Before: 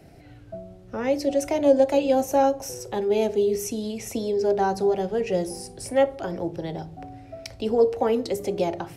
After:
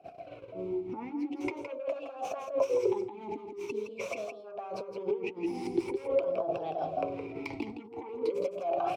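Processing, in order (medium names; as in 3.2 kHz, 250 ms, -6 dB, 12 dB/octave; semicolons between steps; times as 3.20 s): tracing distortion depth 0.11 ms; in parallel at -4.5 dB: sine folder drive 12 dB, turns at -6.5 dBFS; on the sum: peak limiter -15 dBFS, peak gain reduction 7.5 dB; flange 0.32 Hz, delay 0.1 ms, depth 8.9 ms, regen +61%; gate -37 dBFS, range -20 dB; compressor with a negative ratio -30 dBFS, ratio -0.5; delay 165 ms -8 dB; talking filter a-u 0.45 Hz; trim +7.5 dB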